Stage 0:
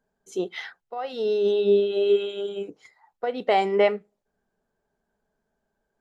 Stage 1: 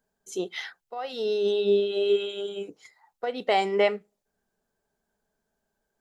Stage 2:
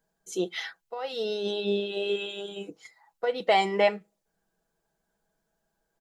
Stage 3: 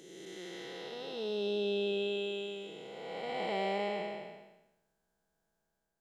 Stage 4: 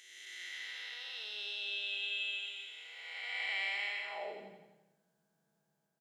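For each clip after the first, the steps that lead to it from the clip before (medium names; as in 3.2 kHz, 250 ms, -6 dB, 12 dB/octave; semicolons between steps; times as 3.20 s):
treble shelf 3.2 kHz +9.5 dB; trim -3 dB
comb 6.1 ms, depth 57%
spectral blur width 684 ms; trim -2 dB
high-pass sweep 2 kHz -> 150 Hz, 4.01–4.52 s; feedback delay 86 ms, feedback 59%, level -10 dB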